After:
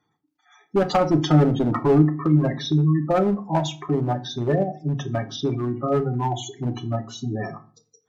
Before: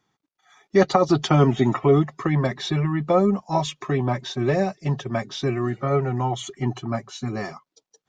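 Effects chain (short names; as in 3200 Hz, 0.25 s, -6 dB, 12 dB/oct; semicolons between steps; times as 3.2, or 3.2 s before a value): spectral gate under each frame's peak -15 dB strong; one-sided clip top -18 dBFS, bottom -9 dBFS; FDN reverb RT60 0.38 s, low-frequency decay 1.6×, high-frequency decay 0.75×, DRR 6.5 dB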